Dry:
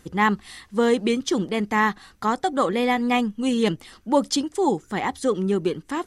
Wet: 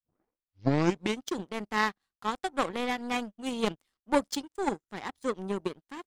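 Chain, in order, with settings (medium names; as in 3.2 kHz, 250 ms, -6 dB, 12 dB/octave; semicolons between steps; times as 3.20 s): tape start-up on the opening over 1.20 s; power-law waveshaper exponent 2; trim -1.5 dB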